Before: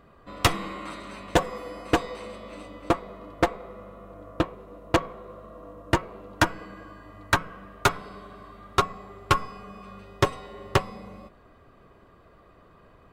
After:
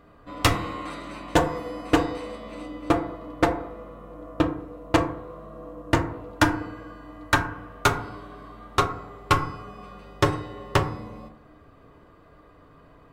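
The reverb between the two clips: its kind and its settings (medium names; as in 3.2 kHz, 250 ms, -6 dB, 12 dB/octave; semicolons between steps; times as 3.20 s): FDN reverb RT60 0.59 s, low-frequency decay 1.3×, high-frequency decay 0.4×, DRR 4 dB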